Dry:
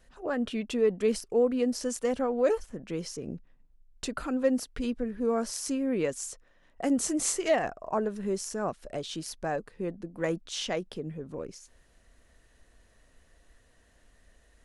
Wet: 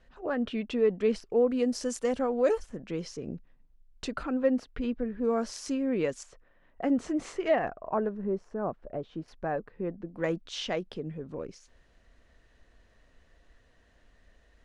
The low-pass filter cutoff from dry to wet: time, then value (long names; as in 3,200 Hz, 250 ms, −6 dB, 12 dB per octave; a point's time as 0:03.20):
3,800 Hz
from 0:01.51 8,300 Hz
from 0:02.79 5,100 Hz
from 0:04.23 2,800 Hz
from 0:05.24 5,200 Hz
from 0:06.23 2,400 Hz
from 0:08.09 1,100 Hz
from 0:09.28 2,000 Hz
from 0:10.09 4,700 Hz